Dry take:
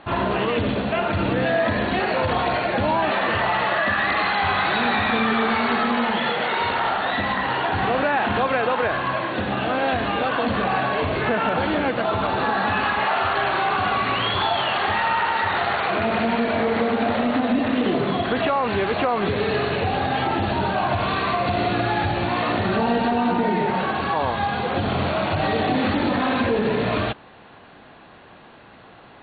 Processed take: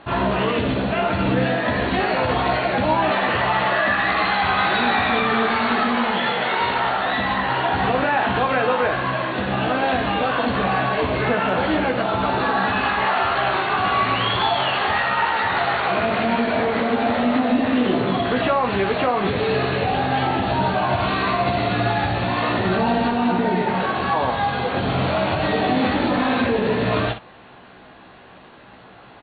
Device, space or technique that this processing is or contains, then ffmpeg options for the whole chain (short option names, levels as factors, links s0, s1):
slapback doubling: -filter_complex "[0:a]asplit=3[s0][s1][s2];[s1]adelay=16,volume=0.562[s3];[s2]adelay=61,volume=0.335[s4];[s0][s3][s4]amix=inputs=3:normalize=0"